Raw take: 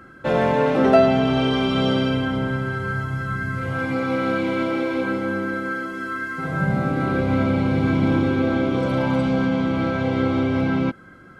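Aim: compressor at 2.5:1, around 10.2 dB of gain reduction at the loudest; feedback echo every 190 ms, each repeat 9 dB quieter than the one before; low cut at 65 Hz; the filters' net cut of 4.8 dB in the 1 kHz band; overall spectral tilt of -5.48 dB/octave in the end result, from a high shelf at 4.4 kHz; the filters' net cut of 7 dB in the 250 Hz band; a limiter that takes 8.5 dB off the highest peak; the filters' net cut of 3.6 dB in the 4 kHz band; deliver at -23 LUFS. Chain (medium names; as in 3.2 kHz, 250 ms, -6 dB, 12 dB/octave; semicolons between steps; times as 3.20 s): high-pass 65 Hz; peaking EQ 250 Hz -8 dB; peaking EQ 1 kHz -6.5 dB; peaking EQ 4 kHz -6.5 dB; treble shelf 4.4 kHz +4 dB; compression 2.5:1, threshold -29 dBFS; peak limiter -25 dBFS; feedback delay 190 ms, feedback 35%, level -9 dB; trim +10.5 dB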